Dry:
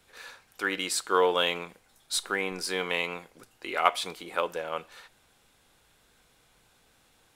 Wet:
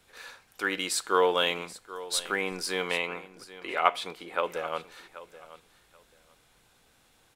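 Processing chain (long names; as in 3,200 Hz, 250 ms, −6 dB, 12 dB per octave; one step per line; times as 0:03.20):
0:02.98–0:04.44: bass and treble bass −3 dB, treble −8 dB
on a send: repeating echo 782 ms, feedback 18%, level −16.5 dB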